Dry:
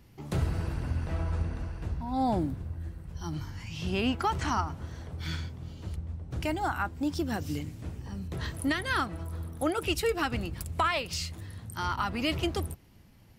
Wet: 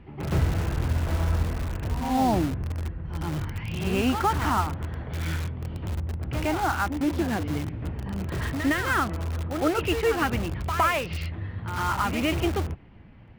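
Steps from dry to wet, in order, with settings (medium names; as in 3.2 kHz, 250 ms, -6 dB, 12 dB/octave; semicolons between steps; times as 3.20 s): low-pass 2.7 kHz 24 dB/octave; reverse echo 111 ms -9 dB; in parallel at -8 dB: integer overflow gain 31 dB; on the sum: trim +4.5 dB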